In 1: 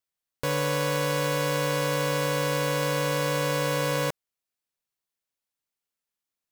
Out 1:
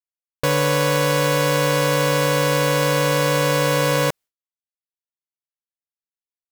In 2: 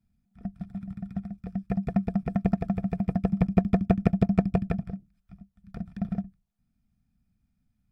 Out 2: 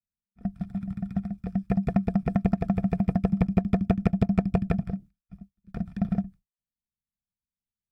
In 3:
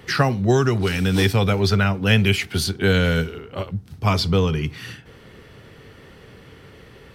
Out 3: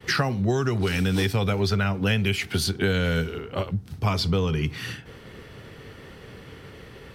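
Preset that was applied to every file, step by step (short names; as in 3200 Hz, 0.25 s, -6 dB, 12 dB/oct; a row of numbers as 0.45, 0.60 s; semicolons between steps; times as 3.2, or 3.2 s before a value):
expander -44 dBFS; compressor 4:1, threshold -23 dBFS; normalise peaks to -9 dBFS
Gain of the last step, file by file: +9.0, +4.5, +2.0 dB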